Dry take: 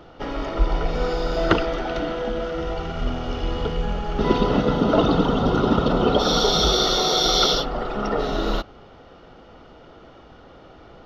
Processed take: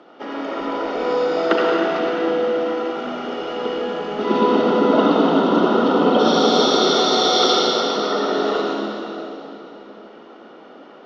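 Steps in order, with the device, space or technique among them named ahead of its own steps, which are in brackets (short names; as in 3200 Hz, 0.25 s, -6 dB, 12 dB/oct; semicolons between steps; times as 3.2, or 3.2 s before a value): elliptic band-pass 230–8900 Hz, stop band 40 dB; swimming-pool hall (reverb RT60 3.4 s, pre-delay 62 ms, DRR -3 dB; high shelf 5500 Hz -8 dB)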